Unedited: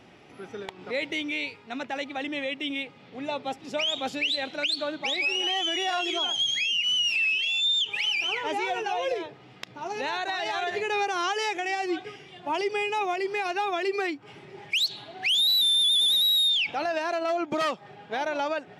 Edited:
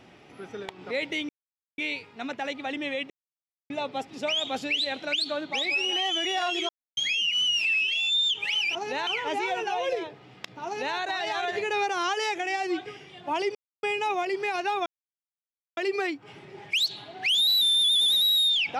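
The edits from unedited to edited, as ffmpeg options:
ffmpeg -i in.wav -filter_complex "[0:a]asplit=10[link_01][link_02][link_03][link_04][link_05][link_06][link_07][link_08][link_09][link_10];[link_01]atrim=end=1.29,asetpts=PTS-STARTPTS,afade=type=out:start_time=1.286:duration=0.004:curve=hsin,apad=pad_dur=0.49[link_11];[link_02]atrim=start=1.29:end=2.61,asetpts=PTS-STARTPTS,afade=type=in:duration=0.004:curve=hsin,afade=type=out:start_time=1.316:duration=0.004:curve=hsin[link_12];[link_03]atrim=start=2.61:end=3.21,asetpts=PTS-STARTPTS,volume=0[link_13];[link_04]atrim=start=3.21:end=6.2,asetpts=PTS-STARTPTS,afade=type=in:duration=0.004:curve=hsin,afade=type=out:start_time=2.986:duration=0.004:curve=hsin[link_14];[link_05]atrim=start=6.2:end=6.48,asetpts=PTS-STARTPTS,volume=0[link_15];[link_06]atrim=start=6.48:end=8.262,asetpts=PTS-STARTPTS,afade=type=in:duration=0.004:curve=hsin[link_16];[link_07]atrim=start=9.838:end=10.162[link_17];[link_08]atrim=start=8.258:end=12.74,asetpts=PTS-STARTPTS,afade=type=out:start_time=4.478:duration=0.004:curve=hsin,apad=pad_dur=0.28[link_18];[link_09]atrim=start=12.74:end=13.77,asetpts=PTS-STARTPTS,afade=type=in:duration=0.004:curve=hsin,afade=type=out:start_time=1.026:duration=0.004:curve=hsin,apad=pad_dur=0.91[link_19];[link_10]atrim=start=13.77,asetpts=PTS-STARTPTS,afade=type=in:duration=0.004:curve=hsin[link_20];[link_11][link_12][link_13][link_14][link_15][link_16]concat=n=6:v=0:a=1[link_21];[link_21][link_17]acrossfade=duration=0.004:curve1=hsin:curve2=hsin[link_22];[link_18][link_19][link_20]concat=n=3:v=0:a=1[link_23];[link_22][link_23]acrossfade=duration=0.004:curve1=hsin:curve2=hsin" out.wav

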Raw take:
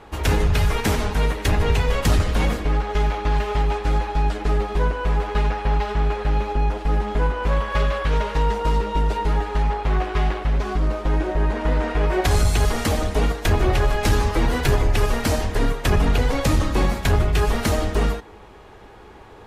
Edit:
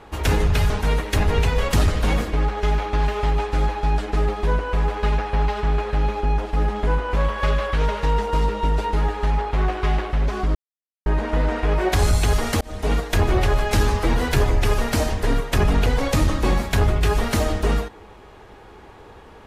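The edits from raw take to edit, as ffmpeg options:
ffmpeg -i in.wav -filter_complex "[0:a]asplit=5[link_01][link_02][link_03][link_04][link_05];[link_01]atrim=end=0.702[link_06];[link_02]atrim=start=1.018:end=10.87,asetpts=PTS-STARTPTS,afade=type=out:start_time=9.848:duration=0.004:curve=hsin[link_07];[link_03]atrim=start=10.87:end=11.38,asetpts=PTS-STARTPTS,volume=0[link_08];[link_04]atrim=start=11.38:end=12.93,asetpts=PTS-STARTPTS,afade=type=in:duration=0.004:curve=hsin,afade=type=out:start_time=1.546:duration=0.004:curve=hsin[link_09];[link_05]atrim=start=12.93,asetpts=PTS-STARTPTS,afade=type=in:duration=0.33[link_10];[link_07][link_08][link_09][link_10]concat=n=4:v=0:a=1[link_11];[link_06][link_11]acrossfade=duration=0.004:curve1=hsin:curve2=hsin" out.wav

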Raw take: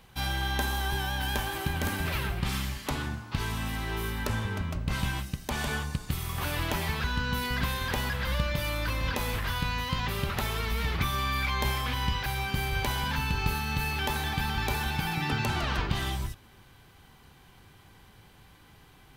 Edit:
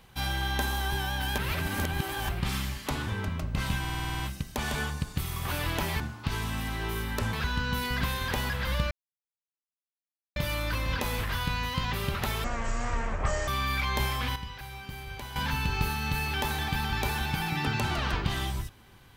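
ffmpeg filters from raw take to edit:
ffmpeg -i in.wav -filter_complex "[0:a]asplit=19[link_01][link_02][link_03][link_04][link_05][link_06][link_07][link_08][link_09][link_10][link_11][link_12][link_13][link_14][link_15][link_16][link_17][link_18][link_19];[link_01]atrim=end=1.382[link_20];[link_02]atrim=start=1.378:end=2.292,asetpts=PTS-STARTPTS,areverse[link_21];[link_03]atrim=start=2.288:end=3.082[link_22];[link_04]atrim=start=4.408:end=5.182[link_23];[link_05]atrim=start=5.128:end=5.182[link_24];[link_06]atrim=start=5.128:end=5.182[link_25];[link_07]atrim=start=5.128:end=5.182[link_26];[link_08]atrim=start=5.128:end=5.182[link_27];[link_09]atrim=start=5.128:end=5.182[link_28];[link_10]atrim=start=5.128:end=5.182[link_29];[link_11]atrim=start=5.128:end=5.182[link_30];[link_12]atrim=start=5.128:end=6.932[link_31];[link_13]atrim=start=3.078:end=4.412[link_32];[link_14]atrim=start=6.928:end=8.51,asetpts=PTS-STARTPTS,afade=type=out:start_time=1.578:duration=0.004:curve=hsin,apad=pad_dur=1.45[link_33];[link_15]atrim=start=8.51:end=10.594,asetpts=PTS-STARTPTS,afade=type=in:duration=0.004:curve=hsin[link_34];[link_16]atrim=start=10.59:end=11.13,asetpts=PTS-STARTPTS,asetrate=22932,aresample=44100,atrim=end_sample=45796,asetpts=PTS-STARTPTS[link_35];[link_17]atrim=start=11.126:end=12.012[link_36];[link_18]atrim=start=12.008:end=13.012,asetpts=PTS-STARTPTS,volume=-10.5dB[link_37];[link_19]atrim=start=13.008[link_38];[link_20][link_21]acrossfade=duration=0.004:curve1=hsin:curve2=hsin[link_39];[link_39][link_22]acrossfade=duration=0.004:curve1=hsin:curve2=hsin[link_40];[link_40][link_23]acrossfade=duration=0.004:curve1=hsin:curve2=hsin[link_41];[link_41][link_24]acrossfade=duration=0.004:curve1=hsin:curve2=hsin[link_42];[link_42][link_25]acrossfade=duration=0.004:curve1=hsin:curve2=hsin[link_43];[link_43][link_26]acrossfade=duration=0.004:curve1=hsin:curve2=hsin[link_44];[link_44][link_27]acrossfade=duration=0.004:curve1=hsin:curve2=hsin[link_45];[link_45][link_28]acrossfade=duration=0.004:curve1=hsin:curve2=hsin[link_46];[link_46][link_29]acrossfade=duration=0.004:curve1=hsin:curve2=hsin[link_47];[link_47][link_30]acrossfade=duration=0.004:curve1=hsin:curve2=hsin[link_48];[link_48][link_31]acrossfade=duration=0.004:curve1=hsin:curve2=hsin[link_49];[link_49][link_32]acrossfade=duration=0.004:curve1=hsin:curve2=hsin[link_50];[link_33][link_34]concat=n=2:v=0:a=1[link_51];[link_50][link_51]acrossfade=duration=0.004:curve1=hsin:curve2=hsin[link_52];[link_52][link_35]acrossfade=duration=0.004:curve1=hsin:curve2=hsin[link_53];[link_53][link_36]acrossfade=duration=0.004:curve1=hsin:curve2=hsin[link_54];[link_54][link_37]acrossfade=duration=0.004:curve1=hsin:curve2=hsin[link_55];[link_55][link_38]acrossfade=duration=0.004:curve1=hsin:curve2=hsin" out.wav

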